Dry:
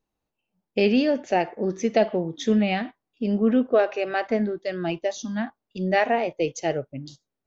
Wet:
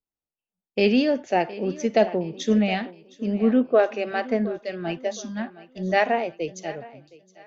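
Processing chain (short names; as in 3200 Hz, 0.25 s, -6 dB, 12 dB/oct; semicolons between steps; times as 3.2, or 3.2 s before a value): ending faded out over 1.41 s; thinning echo 0.716 s, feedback 44%, high-pass 170 Hz, level -15 dB; three-band expander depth 40%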